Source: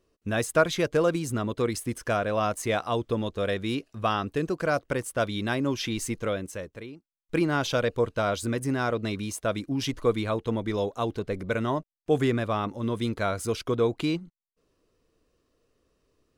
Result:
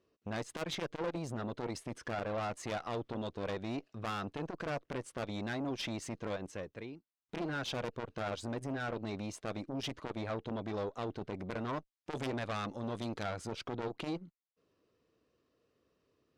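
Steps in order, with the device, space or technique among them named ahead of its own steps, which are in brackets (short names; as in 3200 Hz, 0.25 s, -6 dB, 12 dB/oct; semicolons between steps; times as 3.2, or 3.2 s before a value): valve radio (BPF 94–5000 Hz; tube stage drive 27 dB, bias 0.4; core saturation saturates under 440 Hz); 11.73–13.23 high shelf 3900 Hz +10 dB; gain -2.5 dB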